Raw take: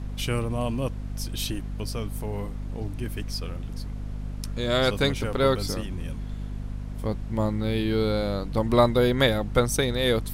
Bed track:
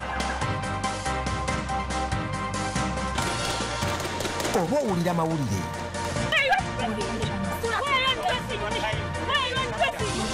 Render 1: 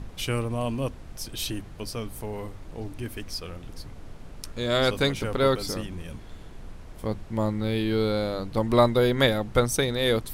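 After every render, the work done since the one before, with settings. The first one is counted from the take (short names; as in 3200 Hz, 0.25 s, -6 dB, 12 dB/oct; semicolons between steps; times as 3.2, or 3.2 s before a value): notches 50/100/150/200/250 Hz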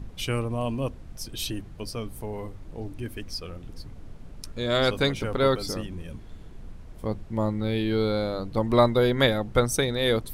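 denoiser 6 dB, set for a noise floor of -43 dBFS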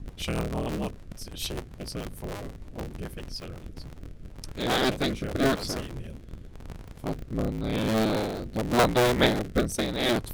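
cycle switcher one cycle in 3, inverted; rotary speaker horn 6.7 Hz, later 0.9 Hz, at 3.22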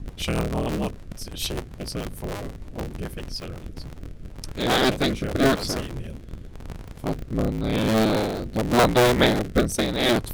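gain +4.5 dB; limiter -3 dBFS, peak gain reduction 2.5 dB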